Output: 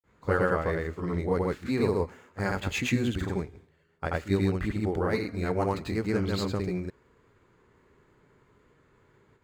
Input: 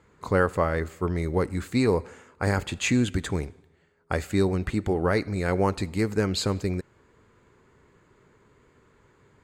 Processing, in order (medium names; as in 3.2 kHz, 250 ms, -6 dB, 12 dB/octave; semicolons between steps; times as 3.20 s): median filter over 5 samples; granulator 193 ms, grains 20 per s, spray 100 ms, pitch spread up and down by 0 st; trim +1.5 dB